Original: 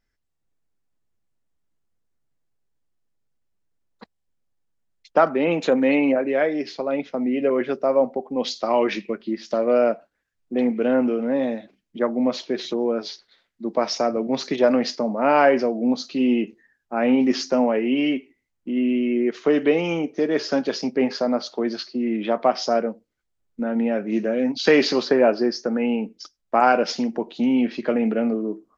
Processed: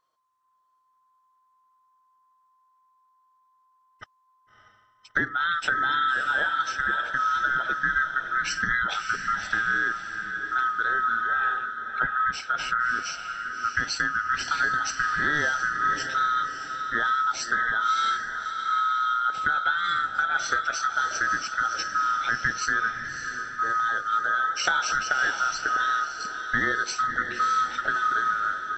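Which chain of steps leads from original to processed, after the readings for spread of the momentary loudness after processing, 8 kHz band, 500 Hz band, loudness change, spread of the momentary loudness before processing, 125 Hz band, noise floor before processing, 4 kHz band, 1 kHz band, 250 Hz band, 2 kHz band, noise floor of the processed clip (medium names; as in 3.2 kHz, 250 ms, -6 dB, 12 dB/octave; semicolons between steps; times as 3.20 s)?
5 LU, no reading, -23.0 dB, -3.0 dB, 9 LU, -6.0 dB, -76 dBFS, -1.0 dB, +3.0 dB, -22.5 dB, +9.0 dB, -67 dBFS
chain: split-band scrambler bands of 1 kHz; compression, threshold -22 dBFS, peak gain reduction 11 dB; on a send: echo that smears into a reverb 619 ms, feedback 42%, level -7 dB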